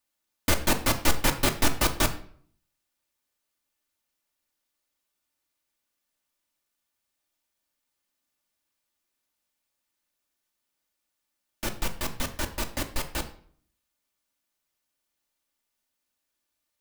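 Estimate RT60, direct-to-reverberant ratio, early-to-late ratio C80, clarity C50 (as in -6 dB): 0.55 s, 4.0 dB, 16.0 dB, 13.0 dB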